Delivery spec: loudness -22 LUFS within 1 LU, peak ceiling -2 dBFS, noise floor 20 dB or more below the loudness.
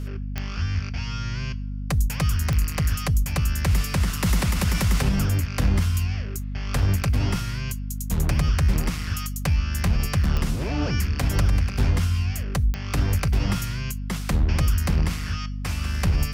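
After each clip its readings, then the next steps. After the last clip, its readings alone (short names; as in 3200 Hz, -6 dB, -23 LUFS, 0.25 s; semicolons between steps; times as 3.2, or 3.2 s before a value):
clicks 4; hum 50 Hz; harmonics up to 250 Hz; hum level -27 dBFS; loudness -25.0 LUFS; peak -10.0 dBFS; loudness target -22.0 LUFS
-> de-click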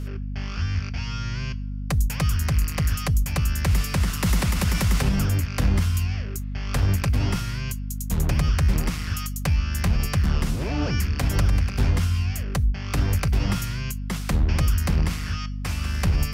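clicks 0; hum 50 Hz; harmonics up to 250 Hz; hum level -27 dBFS
-> notches 50/100/150/200/250 Hz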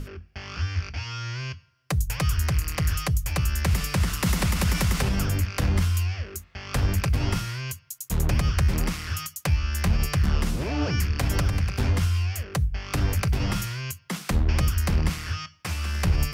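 hum none; loudness -26.5 LUFS; peak -11.0 dBFS; loudness target -22.0 LUFS
-> gain +4.5 dB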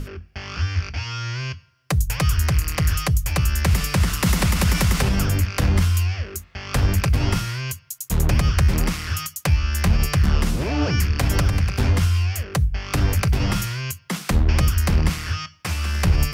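loudness -22.0 LUFS; peak -6.5 dBFS; noise floor -51 dBFS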